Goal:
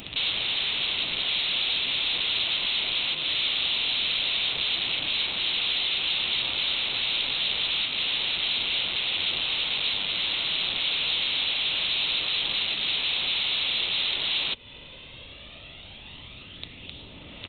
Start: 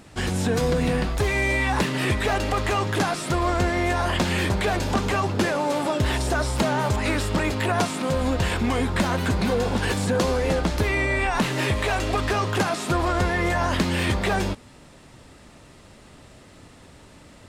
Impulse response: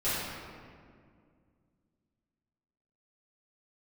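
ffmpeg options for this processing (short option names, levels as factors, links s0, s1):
-af "acompressor=threshold=0.0224:ratio=4,aeval=exprs='0.075*(cos(1*acos(clip(val(0)/0.075,-1,1)))-cos(1*PI/2))+0.00188*(cos(7*acos(clip(val(0)/0.075,-1,1)))-cos(7*PI/2))':c=same,aphaser=in_gain=1:out_gain=1:delay=2:decay=0.41:speed=0.17:type=sinusoidal,aresample=8000,aeval=exprs='(mod(56.2*val(0)+1,2)-1)/56.2':c=same,aresample=44100,aexciter=amount=11.6:drive=2.2:freq=2500"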